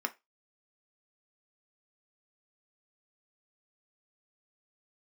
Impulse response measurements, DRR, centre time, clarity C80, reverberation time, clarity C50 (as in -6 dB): 6.0 dB, 4 ms, 29.0 dB, 0.20 s, 20.5 dB